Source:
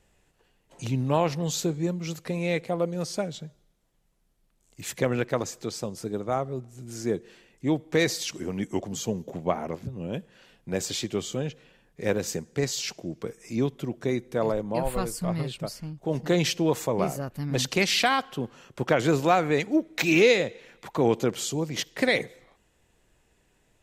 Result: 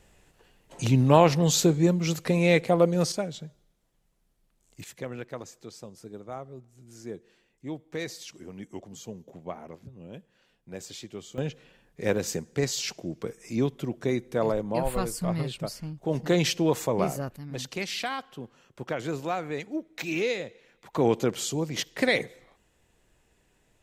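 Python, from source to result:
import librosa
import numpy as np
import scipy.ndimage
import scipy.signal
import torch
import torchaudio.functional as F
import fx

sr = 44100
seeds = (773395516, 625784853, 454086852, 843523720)

y = fx.gain(x, sr, db=fx.steps((0.0, 6.0), (3.12, -1.0), (4.84, -11.0), (11.38, 0.0), (17.36, -9.0), (20.93, -0.5)))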